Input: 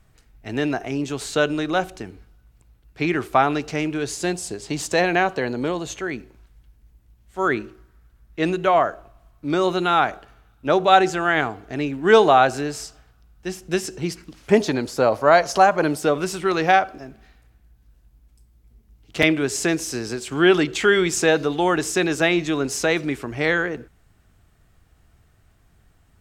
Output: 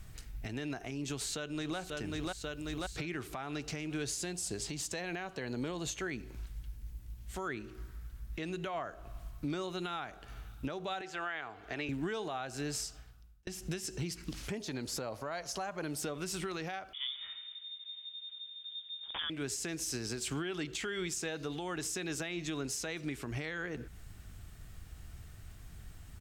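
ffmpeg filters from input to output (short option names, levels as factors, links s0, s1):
-filter_complex "[0:a]asplit=2[s0][s1];[s1]afade=t=in:st=1.05:d=0.01,afade=t=out:st=1.78:d=0.01,aecho=0:1:540|1080|1620|2160|2700:0.281838|0.140919|0.0704596|0.0352298|0.0176149[s2];[s0][s2]amix=inputs=2:normalize=0,asettb=1/sr,asplit=3[s3][s4][s5];[s3]atrim=end=11.014[s6];[s4]atrim=start=11.01:end=11.89,asetpts=PTS-STARTPTS,afade=t=in:d=0.004:c=qsin,afade=t=out:st=0.876:d=0.004:c=qsin,acrossover=split=450 4100:gain=0.2 1 0.224[s7][s8][s9];[s7][s8][s9]amix=inputs=3:normalize=0[s10];[s5]atrim=start=11.886[s11];[s6][s10]acrossfade=d=0.004:c1=hsin:c2=qsin[s12];[s12][s11]acrossfade=d=0.004:c1=qsin:c2=hsin,asettb=1/sr,asplit=3[s13][s14][s15];[s13]atrim=end=16.934[s16];[s14]atrim=start=16.93:end=19.3,asetpts=PTS-STARTPTS,afade=t=in:d=0.004:c=qsin,afade=t=out:st=2.366:d=0.004:c=qsin,lowpass=f=3100:t=q:w=0.5098,lowpass=f=3100:t=q:w=0.6013,lowpass=f=3100:t=q:w=0.9,lowpass=f=3100:t=q:w=2.563,afreqshift=-3700[s17];[s15]atrim=start=19.296[s18];[s16][s17]acrossfade=d=0.004:c1=hsin:c2=qsin[s19];[s19][s18]acrossfade=d=0.004:c1=qsin:c2=hsin,asplit=2[s20][s21];[s20]atrim=end=13.47,asetpts=PTS-STARTPTS,afade=t=out:st=12.55:d=0.92[s22];[s21]atrim=start=13.47,asetpts=PTS-STARTPTS,afade=t=in:d=0.004:c=hsin[s23];[s22][s23]concat=n=2:v=0:a=1,equalizer=f=640:w=0.33:g=-8.5,acompressor=threshold=0.01:ratio=6,alimiter=level_in=4.22:limit=0.0631:level=0:latency=1:release=298,volume=0.237,volume=2.82"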